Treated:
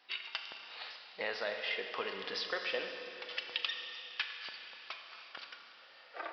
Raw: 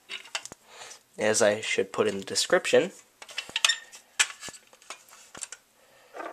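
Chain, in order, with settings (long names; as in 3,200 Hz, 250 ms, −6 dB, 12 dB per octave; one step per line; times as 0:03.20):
high-pass filter 1,400 Hz 6 dB per octave
downward compressor 3 to 1, threshold −37 dBFS, peak gain reduction 15.5 dB
four-comb reverb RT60 3.3 s, combs from 27 ms, DRR 4 dB
downsampling to 11,025 Hz
level +1 dB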